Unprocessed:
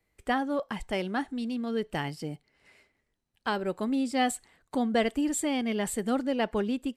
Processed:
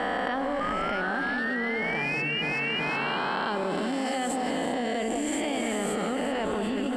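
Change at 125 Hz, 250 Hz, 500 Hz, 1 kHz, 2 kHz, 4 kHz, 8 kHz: +2.0 dB, -1.0 dB, +2.0 dB, +4.0 dB, +9.0 dB, +5.0 dB, -0.5 dB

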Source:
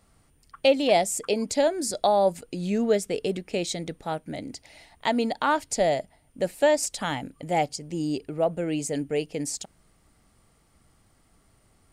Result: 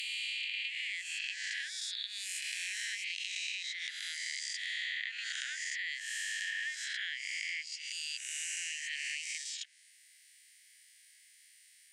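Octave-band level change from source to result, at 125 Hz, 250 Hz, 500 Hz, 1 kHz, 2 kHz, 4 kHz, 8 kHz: under -40 dB, under -40 dB, under -40 dB, under -40 dB, 0.0 dB, -1.0 dB, -6.0 dB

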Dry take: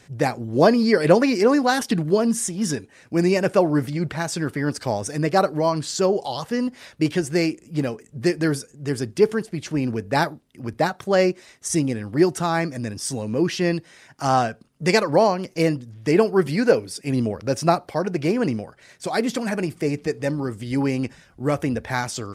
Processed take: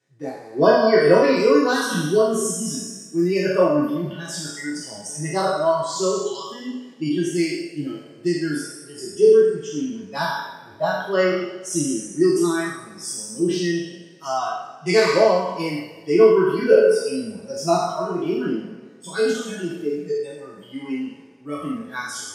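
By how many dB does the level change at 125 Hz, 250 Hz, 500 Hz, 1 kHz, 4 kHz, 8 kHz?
-6.0 dB, -1.5 dB, +3.0 dB, -1.0 dB, +0.5 dB, +1.5 dB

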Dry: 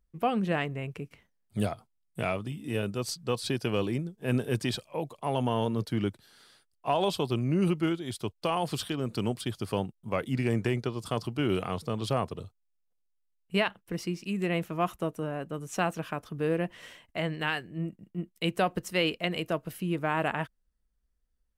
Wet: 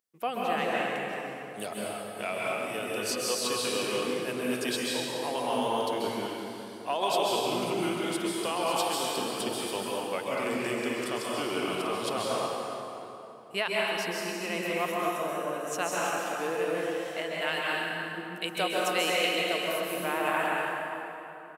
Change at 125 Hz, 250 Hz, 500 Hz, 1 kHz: -13.0 dB, -3.5 dB, +2.0 dB, +3.5 dB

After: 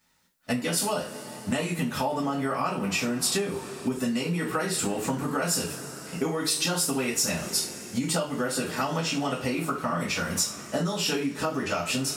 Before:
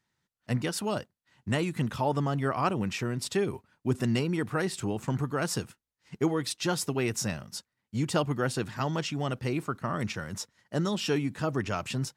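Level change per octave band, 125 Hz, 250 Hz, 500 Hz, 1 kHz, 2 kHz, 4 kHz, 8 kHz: -3.0 dB, +2.0 dB, +1.5 dB, +3.0 dB, +4.0 dB, +7.0 dB, +10.0 dB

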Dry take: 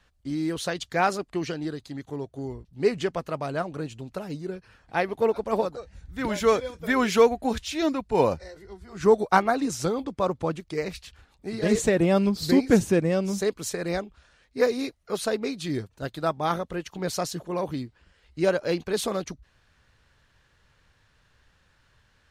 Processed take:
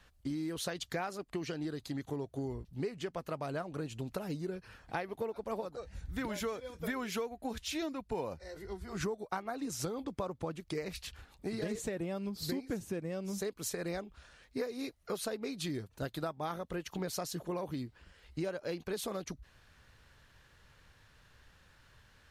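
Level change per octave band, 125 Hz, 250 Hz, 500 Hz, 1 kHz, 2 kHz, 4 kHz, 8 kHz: -9.5 dB, -12.0 dB, -14.0 dB, -14.5 dB, -12.5 dB, -8.5 dB, -8.0 dB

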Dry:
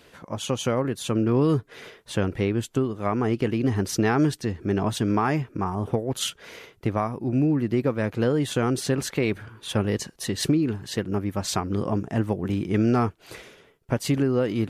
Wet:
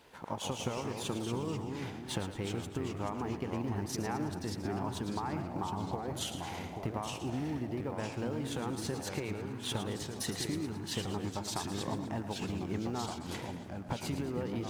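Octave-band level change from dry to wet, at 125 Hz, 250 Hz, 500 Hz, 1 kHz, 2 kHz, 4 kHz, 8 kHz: -12.0 dB, -12.5 dB, -13.0 dB, -8.5 dB, -11.0 dB, -7.0 dB, -8.0 dB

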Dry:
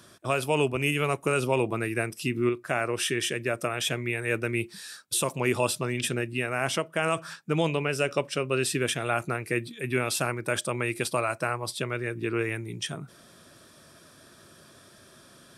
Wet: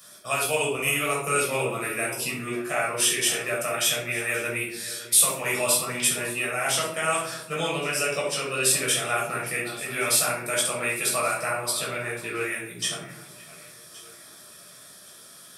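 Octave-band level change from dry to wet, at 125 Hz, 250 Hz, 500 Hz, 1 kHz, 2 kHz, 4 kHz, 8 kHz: -6.0 dB, -4.5 dB, -0.5 dB, +2.0 dB, +3.5 dB, +5.5 dB, +11.0 dB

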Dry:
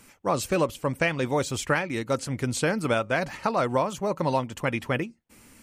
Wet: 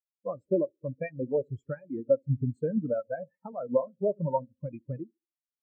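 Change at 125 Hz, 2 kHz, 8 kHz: -3.0 dB, -21.0 dB, under -40 dB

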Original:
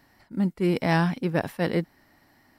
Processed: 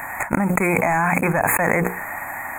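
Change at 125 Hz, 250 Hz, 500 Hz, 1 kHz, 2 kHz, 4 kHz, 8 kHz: +2.5 dB, +3.0 dB, +6.0 dB, +11.5 dB, +12.5 dB, under -25 dB, no reading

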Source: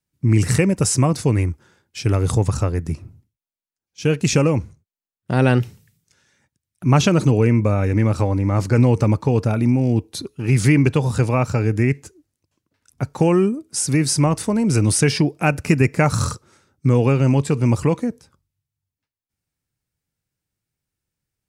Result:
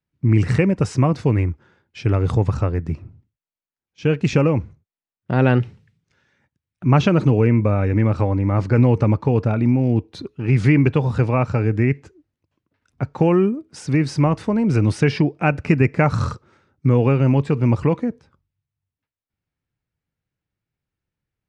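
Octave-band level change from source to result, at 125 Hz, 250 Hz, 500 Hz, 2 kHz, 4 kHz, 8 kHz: 0.0 dB, 0.0 dB, 0.0 dB, -1.0 dB, -7.0 dB, under -15 dB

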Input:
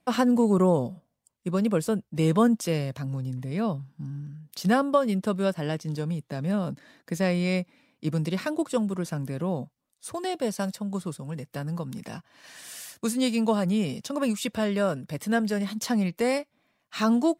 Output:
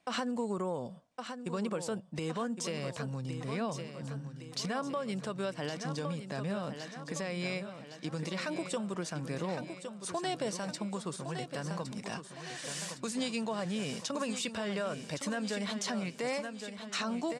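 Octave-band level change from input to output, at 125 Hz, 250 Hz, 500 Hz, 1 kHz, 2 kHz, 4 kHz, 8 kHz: -10.0 dB, -11.5 dB, -9.0 dB, -7.5 dB, -5.0 dB, -2.0 dB, -2.5 dB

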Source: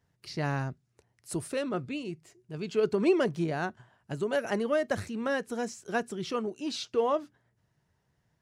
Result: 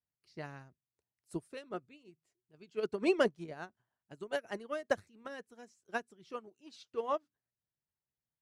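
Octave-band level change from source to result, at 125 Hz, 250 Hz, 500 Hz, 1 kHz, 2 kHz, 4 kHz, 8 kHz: -16.5 dB, -9.5 dB, -7.5 dB, -7.0 dB, -6.0 dB, -8.5 dB, -13.5 dB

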